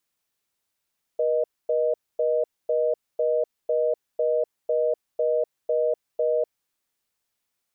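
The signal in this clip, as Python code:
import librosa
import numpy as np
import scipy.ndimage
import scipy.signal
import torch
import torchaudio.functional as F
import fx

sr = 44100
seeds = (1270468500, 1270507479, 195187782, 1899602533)

y = fx.call_progress(sr, length_s=5.39, kind='reorder tone', level_db=-22.5)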